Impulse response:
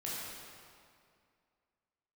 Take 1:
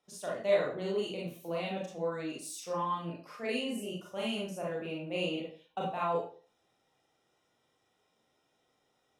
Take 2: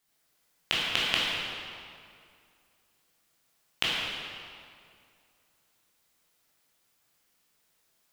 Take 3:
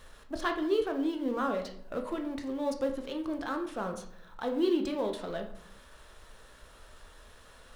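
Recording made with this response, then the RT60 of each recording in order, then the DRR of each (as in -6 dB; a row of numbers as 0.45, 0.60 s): 2; 0.40, 2.3, 0.65 s; -5.5, -7.5, 4.0 dB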